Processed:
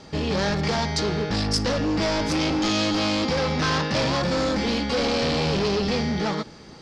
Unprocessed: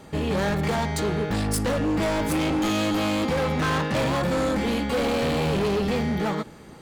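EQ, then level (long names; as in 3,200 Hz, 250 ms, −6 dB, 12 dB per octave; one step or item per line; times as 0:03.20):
low-pass with resonance 5,200 Hz, resonance Q 4.3
0.0 dB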